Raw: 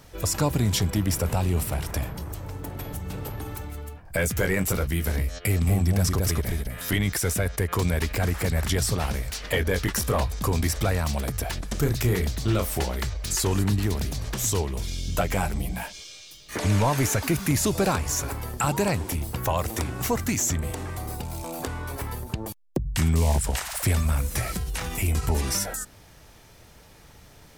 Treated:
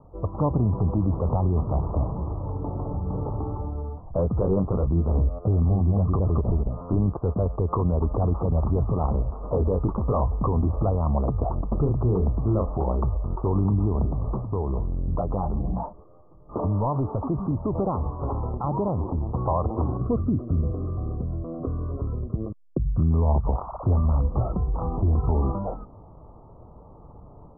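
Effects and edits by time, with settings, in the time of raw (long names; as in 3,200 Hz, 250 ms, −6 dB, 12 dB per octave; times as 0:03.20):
0:14.05–0:19.31: downward compressor, threshold −26 dBFS
0:19.97–0:23.11: phaser with its sweep stopped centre 2,100 Hz, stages 4
whole clip: Butterworth low-pass 1,200 Hz 96 dB per octave; automatic gain control gain up to 5.5 dB; brickwall limiter −14.5 dBFS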